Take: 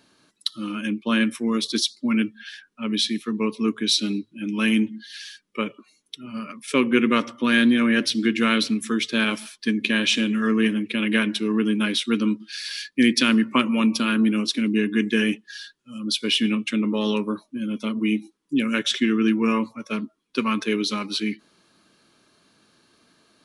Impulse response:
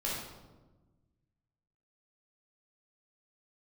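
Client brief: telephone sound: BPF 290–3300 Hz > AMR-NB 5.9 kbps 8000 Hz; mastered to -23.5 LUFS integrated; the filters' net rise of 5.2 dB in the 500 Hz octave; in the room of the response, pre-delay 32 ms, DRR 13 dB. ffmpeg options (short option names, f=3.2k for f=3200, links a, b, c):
-filter_complex "[0:a]equalizer=f=500:t=o:g=7.5,asplit=2[a][b];[1:a]atrim=start_sample=2205,adelay=32[c];[b][c]afir=irnorm=-1:irlink=0,volume=-18dB[d];[a][d]amix=inputs=2:normalize=0,highpass=290,lowpass=3.3k,volume=1.5dB" -ar 8000 -c:a libopencore_amrnb -b:a 5900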